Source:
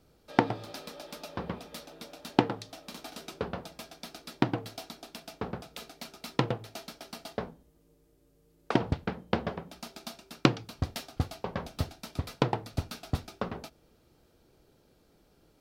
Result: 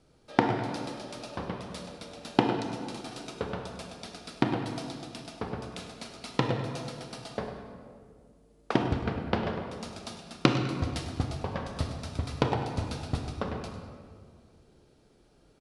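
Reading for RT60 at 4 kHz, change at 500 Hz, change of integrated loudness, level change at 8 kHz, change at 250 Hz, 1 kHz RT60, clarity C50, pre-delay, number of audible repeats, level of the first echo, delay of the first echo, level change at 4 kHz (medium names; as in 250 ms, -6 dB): 1.2 s, +2.0 dB, +1.5 dB, +1.0 dB, +2.0 dB, 1.9 s, 4.5 dB, 26 ms, 1, -13.5 dB, 101 ms, +1.0 dB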